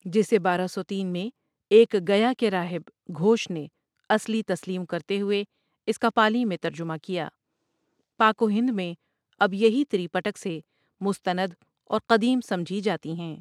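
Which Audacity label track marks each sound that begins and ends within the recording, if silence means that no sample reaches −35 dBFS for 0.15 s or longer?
1.710000	2.880000	sound
3.090000	3.660000	sound
4.100000	5.440000	sound
5.880000	7.280000	sound
8.200000	8.940000	sound
9.410000	10.600000	sound
11.010000	11.490000	sound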